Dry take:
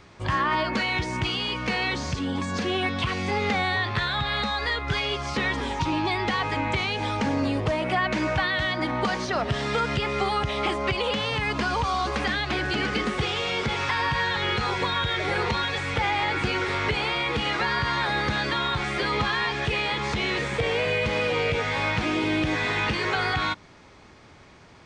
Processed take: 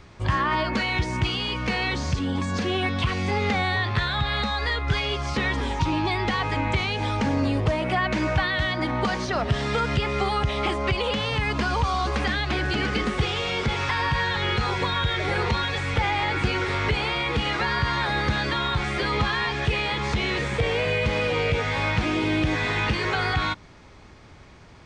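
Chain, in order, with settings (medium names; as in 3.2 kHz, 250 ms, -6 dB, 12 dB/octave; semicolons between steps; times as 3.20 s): bass shelf 95 Hz +10.5 dB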